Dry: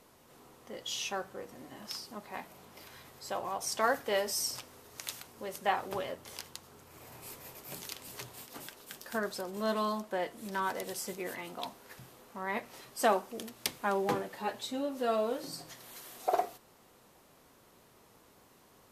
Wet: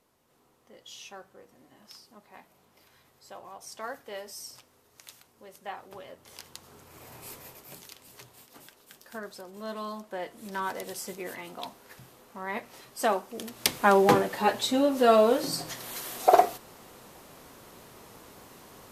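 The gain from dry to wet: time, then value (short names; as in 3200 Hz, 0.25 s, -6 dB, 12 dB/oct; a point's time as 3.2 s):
5.98 s -9 dB
6.7 s +3 dB
7.37 s +3 dB
7.9 s -5.5 dB
9.7 s -5.5 dB
10.58 s +1 dB
13.28 s +1 dB
13.78 s +11 dB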